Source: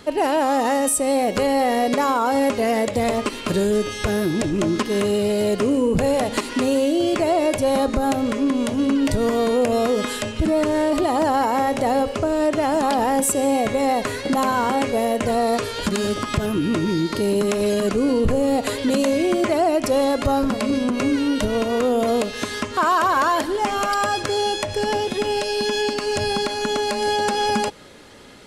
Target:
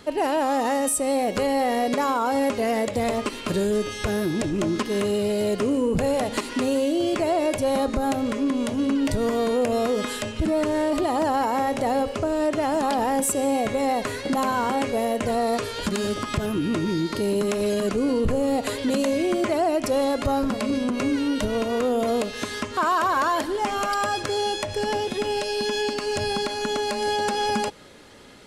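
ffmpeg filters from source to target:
ffmpeg -i in.wav -af "acontrast=35,volume=-8.5dB" out.wav

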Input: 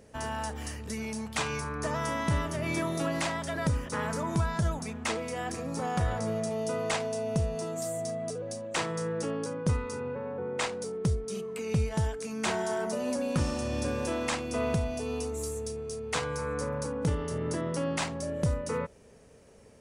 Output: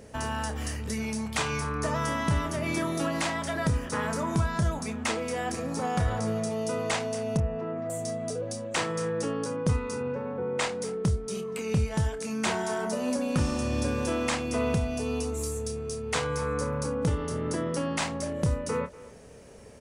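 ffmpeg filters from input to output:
ffmpeg -i in.wav -filter_complex "[0:a]asettb=1/sr,asplit=3[link_01][link_02][link_03];[link_01]atrim=end=7.374[link_04];[link_02]atrim=start=7.37:end=7.9,asetpts=PTS-STARTPTS,afade=type=in:duration=0.004:curve=qsin,afade=type=out:start_time=0.526:duration=0.004:curve=qsin,lowpass=frequency=2200:width=0.5412,lowpass=frequency=2200:width=1.3066[link_05];[link_03]atrim=start=7.896[link_06];[link_04][link_05]acrossfade=duration=0.004:curve1=hsin:curve2=qsin[link_07];[link_07][link_06]acrossfade=duration=0.004:curve1=qsin:curve2=hsin,asplit=2[link_08][link_09];[link_09]acompressor=threshold=-41dB:ratio=6,volume=0.5dB[link_10];[link_08][link_10]amix=inputs=2:normalize=0,asplit=2[link_11][link_12];[link_12]adelay=28,volume=-10.5dB[link_13];[link_11][link_13]amix=inputs=2:normalize=0,asplit=2[link_14][link_15];[link_15]adelay=240,highpass=300,lowpass=3400,asoftclip=type=hard:threshold=-24.5dB,volume=-18dB[link_16];[link_14][link_16]amix=inputs=2:normalize=0" out.wav

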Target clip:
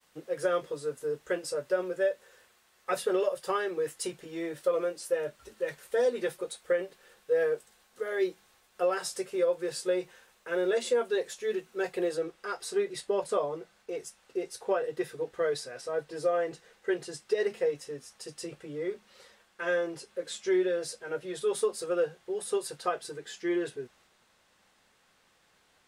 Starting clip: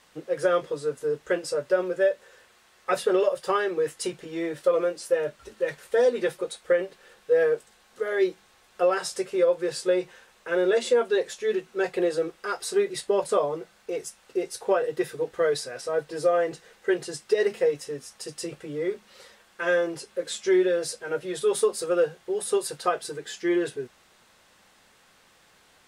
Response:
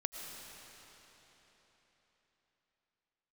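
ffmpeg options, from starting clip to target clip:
-af "agate=range=-33dB:threshold=-56dB:ratio=3:detection=peak,asetnsamples=nb_out_samples=441:pad=0,asendcmd='12.17 highshelf g -3',highshelf=frequency=11000:gain=10.5,volume=-5.5dB"

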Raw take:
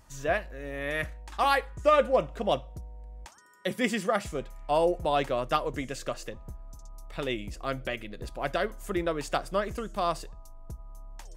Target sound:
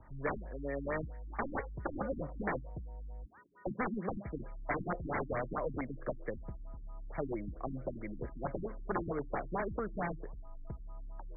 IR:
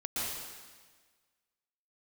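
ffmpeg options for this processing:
-filter_complex "[0:a]aeval=exprs='(mod(14.1*val(0)+1,2)-1)/14.1':channel_layout=same,acrossover=split=180|360|1400|3100[link_01][link_02][link_03][link_04][link_05];[link_01]acompressor=threshold=-44dB:ratio=4[link_06];[link_02]acompressor=threshold=-45dB:ratio=4[link_07];[link_03]acompressor=threshold=-36dB:ratio=4[link_08];[link_04]acompressor=threshold=-41dB:ratio=4[link_09];[link_05]acompressor=threshold=-40dB:ratio=4[link_10];[link_06][link_07][link_08][link_09][link_10]amix=inputs=5:normalize=0,afftfilt=real='re*lt(b*sr/1024,310*pow(2400/310,0.5+0.5*sin(2*PI*4.5*pts/sr)))':imag='im*lt(b*sr/1024,310*pow(2400/310,0.5+0.5*sin(2*PI*4.5*pts/sr)))':win_size=1024:overlap=0.75,volume=1.5dB"

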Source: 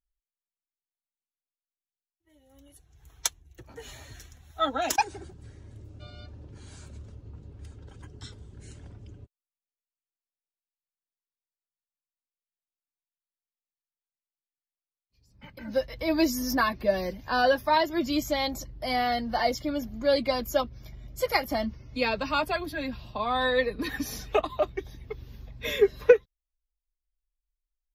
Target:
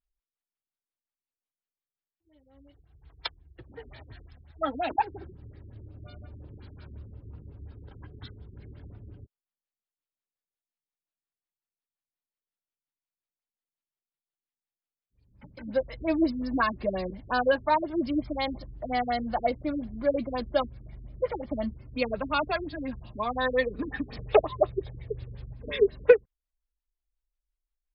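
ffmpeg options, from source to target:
ffmpeg -i in.wav -filter_complex "[0:a]asettb=1/sr,asplit=3[link_01][link_02][link_03];[link_01]atrim=end=24.174[link_04];[link_02]atrim=start=24.17:end=25.54,asetpts=PTS-STARTPTS,afade=type=in:duration=0.004:curve=qsin,afade=type=out:start_time=1.366:duration=0.004:curve=qsin,equalizer=frequency=125:width_type=o:width=1:gain=9,equalizer=frequency=250:width_type=o:width=1:gain=-7,equalizer=frequency=500:width_type=o:width=1:gain=9,equalizer=frequency=2000:width_type=o:width=1:gain=5,equalizer=frequency=4000:width_type=o:width=1:gain=4,equalizer=frequency=8000:width_type=o:width=1:gain=10[link_05];[link_03]atrim=start=25.536[link_06];[link_04][link_05]acrossfade=duration=0.004:curve1=hsin:curve2=qsin[link_07];[link_07][link_06]acrossfade=duration=0.004:curve1=qsin:curve2=hsin,afftfilt=real='re*lt(b*sr/1024,410*pow(5400/410,0.5+0.5*sin(2*PI*5.6*pts/sr)))':imag='im*lt(b*sr/1024,410*pow(5400/410,0.5+0.5*sin(2*PI*5.6*pts/sr)))':win_size=1024:overlap=0.75" out.wav

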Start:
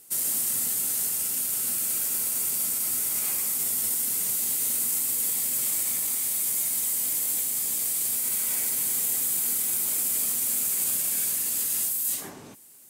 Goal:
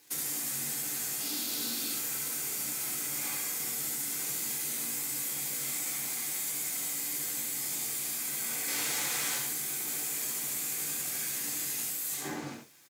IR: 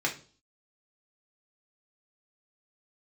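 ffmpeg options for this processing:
-filter_complex "[0:a]asettb=1/sr,asplit=3[link_01][link_02][link_03];[link_01]atrim=end=1.204[link_04];[link_02]atrim=start=1.2:end=1.91,asetpts=PTS-STARTPTS,afade=type=in:duration=0.004:curve=qsin,afade=type=out:start_time=0.706:duration=0.004:curve=qsin,equalizer=frequency=125:width_type=o:width=1:gain=-12,equalizer=frequency=250:width_type=o:width=1:gain=10,equalizer=frequency=2000:width_type=o:width=1:gain=-6,equalizer=frequency=4000:width_type=o:width=1:gain=11,equalizer=frequency=8000:width_type=o:width=1:gain=-5[link_05];[link_03]atrim=start=1.906[link_06];[link_04][link_05]acrossfade=duration=0.004:curve1=hsin:curve2=qsin[link_07];[link_07][link_06]acrossfade=duration=0.004:curve1=qsin:curve2=hsin,acompressor=threshold=-33dB:ratio=5,asettb=1/sr,asplit=3[link_08][link_09][link_10];[link_08]atrim=end=8.684[link_11];[link_09]atrim=start=8.68:end=9.38,asetpts=PTS-STARTPTS,afade=type=in:duration=0.004:curve=qsin,afade=type=out:start_time=0.696:duration=0.004:curve=qsin,asplit=2[link_12][link_13];[link_13]highpass=frequency=720:poles=1,volume=21dB,asoftclip=type=tanh:threshold=-23dB[link_14];[link_12][link_14]amix=inputs=2:normalize=0,lowpass=frequency=5300:poles=1,volume=-6dB[link_15];[link_10]atrim=start=9.376[link_16];[link_11][link_15]acrossfade=duration=0.004:curve1=hsin:curve2=qsin[link_17];[link_17][link_16]acrossfade=duration=0.004:curve1=qsin:curve2=hsin,aeval=exprs='sgn(val(0))*max(abs(val(0))-0.00316,0)':channel_layout=same,aecho=1:1:72:0.596[link_18];[1:a]atrim=start_sample=2205,atrim=end_sample=3969[link_19];[link_18][link_19]afir=irnorm=-1:irlink=0"

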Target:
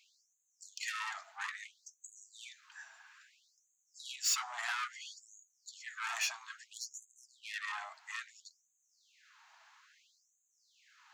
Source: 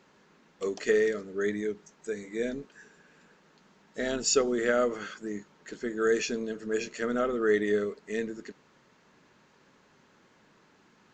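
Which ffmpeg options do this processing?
ffmpeg -i in.wav -af "acontrast=46,aeval=exprs='(tanh(15.8*val(0)+0.3)-tanh(0.3))/15.8':channel_layout=same,afftfilt=real='re*gte(b*sr/1024,620*pow(6300/620,0.5+0.5*sin(2*PI*0.6*pts/sr)))':imag='im*gte(b*sr/1024,620*pow(6300/620,0.5+0.5*sin(2*PI*0.6*pts/sr)))':win_size=1024:overlap=0.75,volume=-3dB" out.wav

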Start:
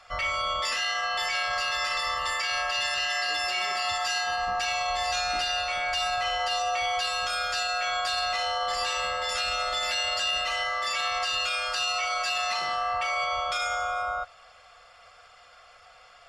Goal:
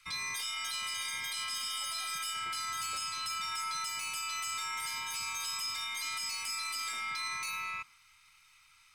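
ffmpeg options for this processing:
ffmpeg -i in.wav -filter_complex "[0:a]aeval=exprs='if(lt(val(0),0),0.708*val(0),val(0))':channel_layout=same,asetrate=80262,aresample=44100,acrossover=split=110|1200|3200[link_01][link_02][link_03][link_04];[link_01]acompressor=threshold=-58dB:ratio=5[link_05];[link_02]agate=range=-10dB:threshold=-56dB:ratio=16:detection=peak[link_06];[link_05][link_06][link_03][link_04]amix=inputs=4:normalize=0,volume=-7.5dB" out.wav

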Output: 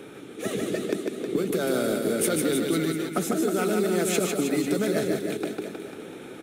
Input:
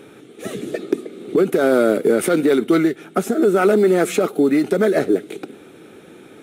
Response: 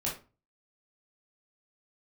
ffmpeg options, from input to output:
-filter_complex "[0:a]bandreject=frequency=45.53:width_type=h:width=4,bandreject=frequency=91.06:width_type=h:width=4,bandreject=frequency=136.59:width_type=h:width=4,acrossover=split=150|3000[link_01][link_02][link_03];[link_02]acompressor=threshold=-25dB:ratio=10[link_04];[link_01][link_04][link_03]amix=inputs=3:normalize=0,aecho=1:1:150|315|496.5|696.2|915.8:0.631|0.398|0.251|0.158|0.1"

